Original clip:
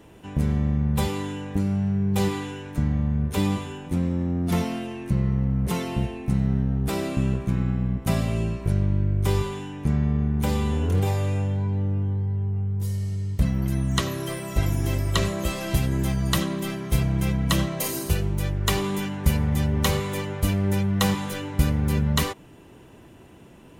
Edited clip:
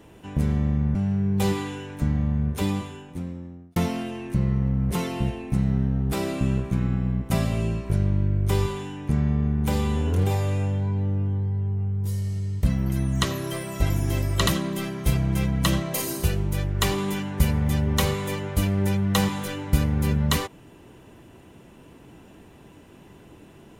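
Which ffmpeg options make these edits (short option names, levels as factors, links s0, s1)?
-filter_complex "[0:a]asplit=4[s0][s1][s2][s3];[s0]atrim=end=0.952[s4];[s1]atrim=start=1.708:end=4.52,asetpts=PTS-STARTPTS,afade=t=out:st=1.452:d=1.36[s5];[s2]atrim=start=4.52:end=15.232,asetpts=PTS-STARTPTS,afade=t=in:d=0.004:c=hsin[s6];[s3]atrim=start=16.328[s7];[s5][s6]concat=n=2:v=0:a=1[s8];[s4][s8]acrossfade=d=0.004:c1=hsin:c2=hsin[s9];[s9][s7]acrossfade=d=0.004:c1=hsin:c2=hsin"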